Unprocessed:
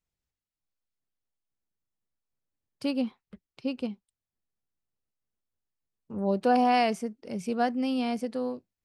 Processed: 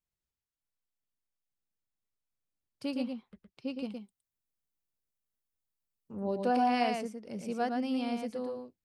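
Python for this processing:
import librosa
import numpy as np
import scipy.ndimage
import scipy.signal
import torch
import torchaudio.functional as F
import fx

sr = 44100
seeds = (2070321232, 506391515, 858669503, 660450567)

y = fx.high_shelf(x, sr, hz=8200.0, db=10.0, at=(3.82, 6.15))
y = y + 10.0 ** (-5.0 / 20.0) * np.pad(y, (int(114 * sr / 1000.0), 0))[:len(y)]
y = y * 10.0 ** (-6.0 / 20.0)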